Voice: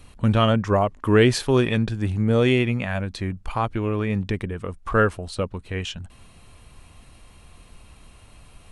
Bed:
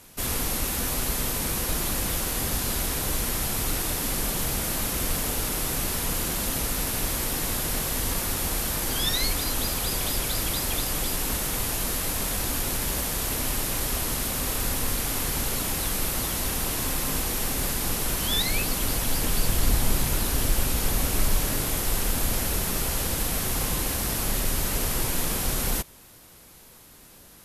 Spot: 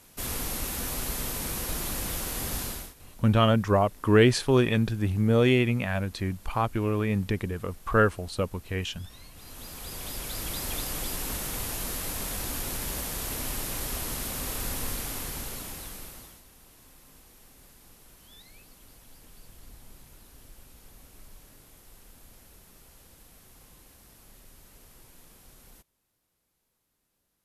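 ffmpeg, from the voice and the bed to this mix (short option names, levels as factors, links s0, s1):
-filter_complex "[0:a]adelay=3000,volume=0.75[s0];[1:a]volume=6.68,afade=t=out:st=2.61:d=0.33:silence=0.0794328,afade=t=in:st=9.32:d=1.4:silence=0.0841395,afade=t=out:st=14.85:d=1.58:silence=0.0794328[s1];[s0][s1]amix=inputs=2:normalize=0"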